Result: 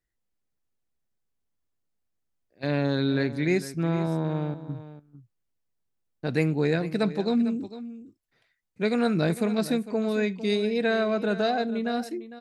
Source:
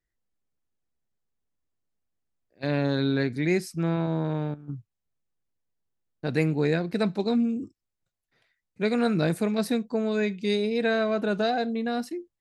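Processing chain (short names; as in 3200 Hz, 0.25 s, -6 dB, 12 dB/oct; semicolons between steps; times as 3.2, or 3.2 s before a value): on a send: echo 0.453 s -14.5 dB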